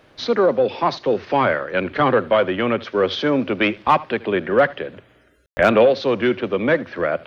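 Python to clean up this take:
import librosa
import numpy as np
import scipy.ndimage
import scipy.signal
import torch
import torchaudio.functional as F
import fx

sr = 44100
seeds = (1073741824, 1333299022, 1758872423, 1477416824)

y = fx.fix_declip(x, sr, threshold_db=-5.0)
y = fx.fix_ambience(y, sr, seeds[0], print_start_s=0.0, print_end_s=0.5, start_s=5.46, end_s=5.57)
y = fx.fix_echo_inverse(y, sr, delay_ms=76, level_db=-21.0)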